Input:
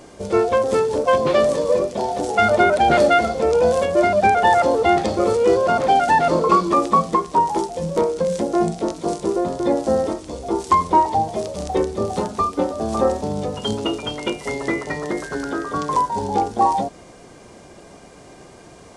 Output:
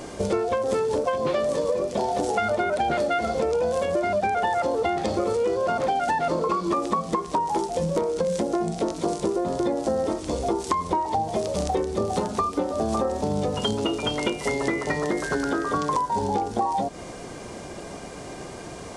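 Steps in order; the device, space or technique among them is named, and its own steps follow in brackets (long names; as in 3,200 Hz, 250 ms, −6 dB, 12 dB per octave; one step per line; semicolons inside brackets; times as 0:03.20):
serial compression, leveller first (downward compressor 2.5 to 1, threshold −17 dBFS, peak gain reduction 5 dB; downward compressor, threshold −28 dBFS, peak gain reduction 13 dB)
level +6 dB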